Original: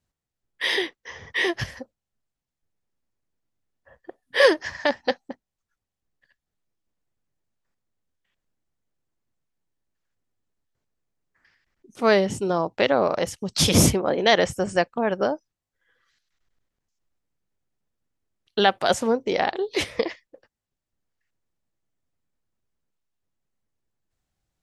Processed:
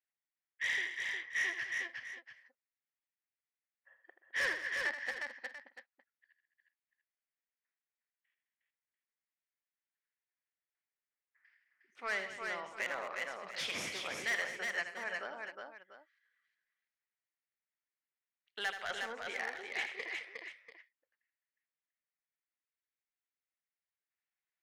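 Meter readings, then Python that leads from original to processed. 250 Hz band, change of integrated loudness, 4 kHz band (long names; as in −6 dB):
−29.5 dB, −15.0 dB, −15.5 dB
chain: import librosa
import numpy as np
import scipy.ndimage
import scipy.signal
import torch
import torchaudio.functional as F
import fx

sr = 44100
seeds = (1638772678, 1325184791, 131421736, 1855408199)

y = fx.bandpass_q(x, sr, hz=2000.0, q=2.7)
y = 10.0 ** (-24.5 / 20.0) * np.tanh(y / 10.0 ** (-24.5 / 20.0))
y = fx.echo_multitap(y, sr, ms=(80, 125, 212, 360, 410, 690), db=(-9.5, -18.0, -14.0, -4.0, -19.5, -13.5))
y = y * 10.0 ** (-4.5 / 20.0)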